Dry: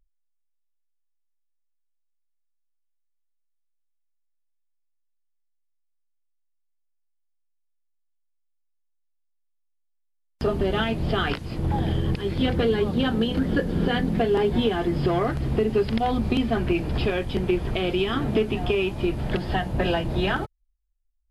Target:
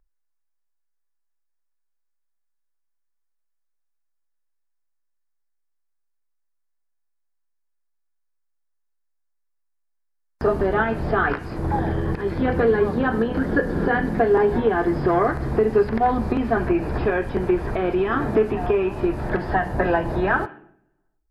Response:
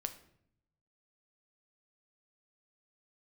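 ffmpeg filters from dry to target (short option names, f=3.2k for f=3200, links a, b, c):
-filter_complex "[0:a]acrossover=split=2500[a][b];[b]acompressor=threshold=-47dB:ratio=4:attack=1:release=60[c];[a][c]amix=inputs=2:normalize=0,asplit=2[d][e];[e]highpass=310,equalizer=f=530:t=q:w=4:g=-3,equalizer=f=1k:t=q:w=4:g=4,equalizer=f=1.7k:t=q:w=4:g=7,lowpass=f=3.2k:w=0.5412,lowpass=f=3.2k:w=1.3066[f];[1:a]atrim=start_sample=2205[g];[f][g]afir=irnorm=-1:irlink=0,volume=1dB[h];[d][h]amix=inputs=2:normalize=0"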